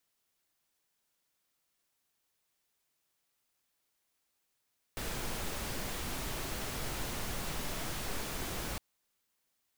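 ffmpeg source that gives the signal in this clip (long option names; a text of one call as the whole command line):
ffmpeg -f lavfi -i "anoisesrc=color=pink:amplitude=0.0684:duration=3.81:sample_rate=44100:seed=1" out.wav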